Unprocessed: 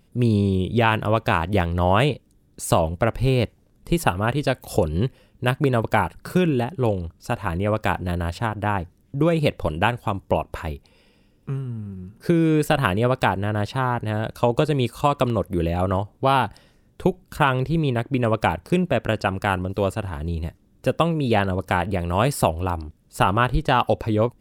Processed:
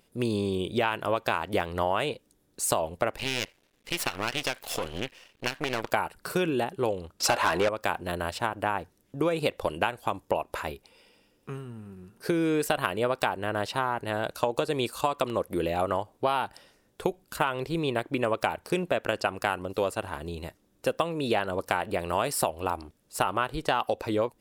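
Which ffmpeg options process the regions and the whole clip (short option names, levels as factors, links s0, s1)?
-filter_complex "[0:a]asettb=1/sr,asplit=3[s0][s1][s2];[s0]atrim=end=3.184[s3];[s1]atrim=start=3.18:end=5.92,asetpts=PTS-STARTPTS,afade=t=in:d=0.004:c=qsin,afade=t=out:st=2.736:d=0.004:c=qsin,equalizer=f=2600:t=o:w=1.8:g=14,acompressor=threshold=0.126:ratio=4:attack=3.2:release=140:knee=1:detection=peak,aeval=exprs='max(val(0),0)':c=same[s4];[s2]atrim=start=5.916[s5];[s3][s4]acrossfade=d=0.004:c1=hsin:c2=qsin[s6];[s6][s5]acrossfade=d=0.004:c1=qsin:c2=hsin,asettb=1/sr,asplit=3[s7][s8][s9];[s7]atrim=end=7.204[s10];[s8]atrim=start=7.2:end=7.69,asetpts=PTS-STARTPTS,afade=t=in:d=0.004:c=qsin,afade=t=out:st=0.486:d=0.004:c=qsin,highshelf=f=5500:g=-4,acontrast=68,asplit=2[s11][s12];[s12]highpass=f=720:p=1,volume=14.1,asoftclip=type=tanh:threshold=0.596[s13];[s11][s13]amix=inputs=2:normalize=0,lowpass=f=5900:p=1,volume=0.501[s14];[s9]atrim=start=7.686[s15];[s10][s14]acrossfade=d=0.004:c1=hsin:c2=qsin[s16];[s16][s15]acrossfade=d=0.004:c1=qsin:c2=hsin,bass=f=250:g=-14,treble=f=4000:g=2,acompressor=threshold=0.0794:ratio=6"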